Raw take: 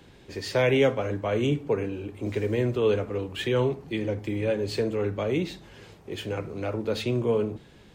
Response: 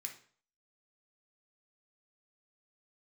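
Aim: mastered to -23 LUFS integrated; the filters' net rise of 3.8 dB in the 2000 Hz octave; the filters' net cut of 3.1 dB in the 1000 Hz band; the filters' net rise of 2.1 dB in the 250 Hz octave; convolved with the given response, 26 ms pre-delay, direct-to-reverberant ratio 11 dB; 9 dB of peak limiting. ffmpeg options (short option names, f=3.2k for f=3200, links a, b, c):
-filter_complex "[0:a]equalizer=f=250:t=o:g=3,equalizer=f=1k:t=o:g=-6,equalizer=f=2k:t=o:g=6,alimiter=limit=-18dB:level=0:latency=1,asplit=2[a][b];[1:a]atrim=start_sample=2205,adelay=26[c];[b][c]afir=irnorm=-1:irlink=0,volume=-7.5dB[d];[a][d]amix=inputs=2:normalize=0,volume=5.5dB"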